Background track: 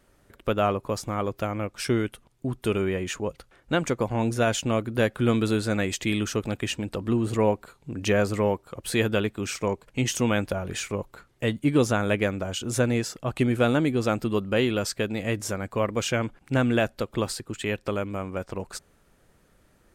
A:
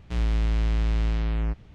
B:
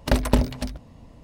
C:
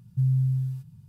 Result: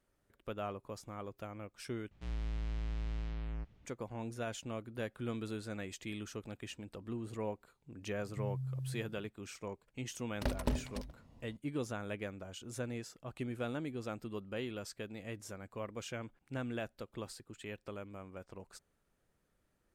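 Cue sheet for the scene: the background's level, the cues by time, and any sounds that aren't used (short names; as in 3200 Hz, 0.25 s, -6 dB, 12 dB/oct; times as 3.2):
background track -17 dB
2.11 replace with A -14.5 dB
8.2 add C -6 dB + compressor, threshold -32 dBFS
10.34 add B -12.5 dB + vocal rider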